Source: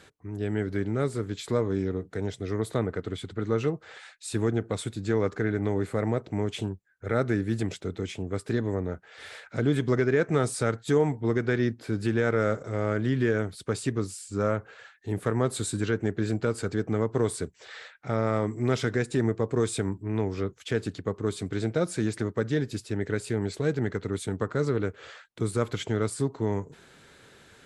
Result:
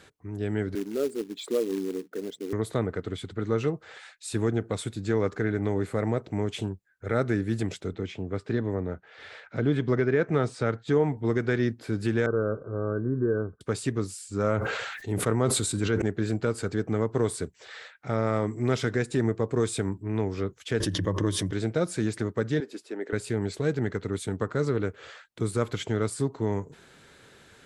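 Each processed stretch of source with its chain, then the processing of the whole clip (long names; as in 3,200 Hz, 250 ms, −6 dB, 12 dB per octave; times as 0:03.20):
0:00.75–0:02.53: spectral envelope exaggerated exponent 2 + high-pass filter 240 Hz 24 dB per octave + floating-point word with a short mantissa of 2 bits
0:07.93–0:11.17: high-pass filter 60 Hz + high-frequency loss of the air 130 metres
0:12.26–0:13.61: Chebyshev low-pass with heavy ripple 1,600 Hz, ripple 9 dB + low-shelf EQ 150 Hz +10 dB
0:14.44–0:16.02: notch filter 1,700 Hz, Q 13 + level that may fall only so fast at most 33 dB per second
0:20.80–0:21.53: EQ curve with evenly spaced ripples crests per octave 1.2, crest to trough 10 dB + background raised ahead of every attack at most 36 dB per second
0:22.60–0:23.13: high-pass filter 300 Hz 24 dB per octave + high-shelf EQ 2,600 Hz −9.5 dB
whole clip: no processing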